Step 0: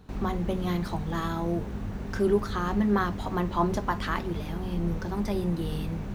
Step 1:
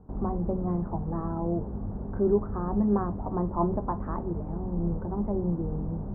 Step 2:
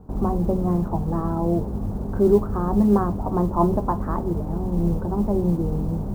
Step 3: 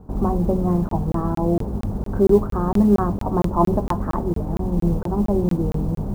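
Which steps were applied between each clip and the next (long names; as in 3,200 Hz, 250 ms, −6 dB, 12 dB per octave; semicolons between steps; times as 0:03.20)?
inverse Chebyshev low-pass filter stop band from 4,300 Hz, stop band 70 dB
noise that follows the level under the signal 35 dB; level +7 dB
regular buffer underruns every 0.23 s, samples 1,024, zero, from 0:00.89; level +2 dB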